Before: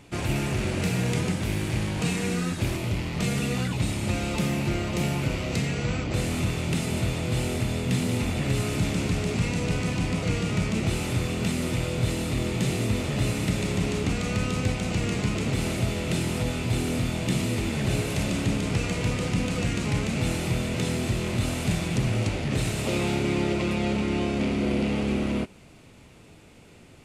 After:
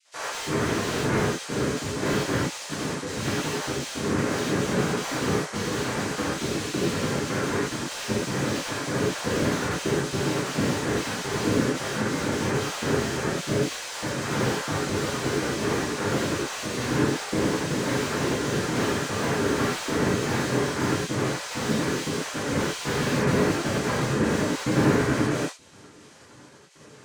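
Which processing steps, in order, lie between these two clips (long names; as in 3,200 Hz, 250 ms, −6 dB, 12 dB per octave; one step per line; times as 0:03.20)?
time-frequency cells dropped at random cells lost 57%
high-pass filter 180 Hz
cochlear-implant simulation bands 3
reverb whose tail is shaped and stops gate 140 ms flat, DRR −7 dB
slew-rate limiting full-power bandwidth 110 Hz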